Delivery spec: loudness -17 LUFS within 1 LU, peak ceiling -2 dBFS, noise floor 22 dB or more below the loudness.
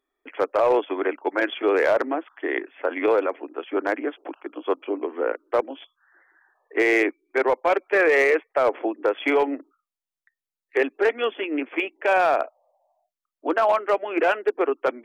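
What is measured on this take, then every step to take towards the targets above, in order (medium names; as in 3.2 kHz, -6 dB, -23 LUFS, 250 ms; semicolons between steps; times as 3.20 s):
clipped samples 0.4%; clipping level -12.5 dBFS; loudness -23.5 LUFS; peak level -12.5 dBFS; loudness target -17.0 LUFS
-> clip repair -12.5 dBFS; trim +6.5 dB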